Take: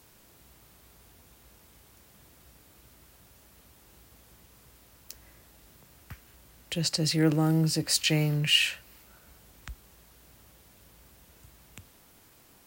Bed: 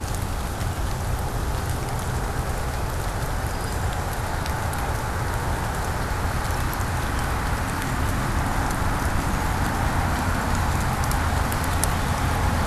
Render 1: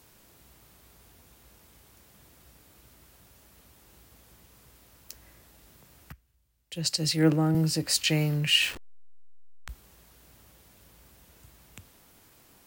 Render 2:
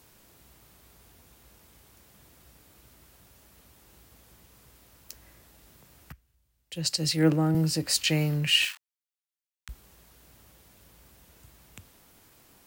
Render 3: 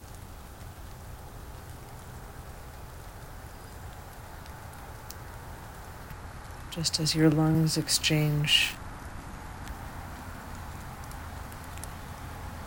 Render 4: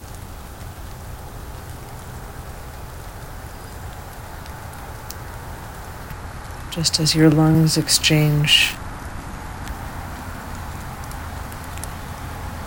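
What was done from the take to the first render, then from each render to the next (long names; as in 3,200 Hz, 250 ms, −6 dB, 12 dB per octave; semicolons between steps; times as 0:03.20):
0:06.12–0:07.55: multiband upward and downward expander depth 70%; 0:08.62–0:09.69: hold until the input has moved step −35 dBFS
0:08.65–0:09.69: Bessel high-pass filter 1,600 Hz, order 8
mix in bed −18 dB
level +9.5 dB; brickwall limiter −3 dBFS, peak gain reduction 2.5 dB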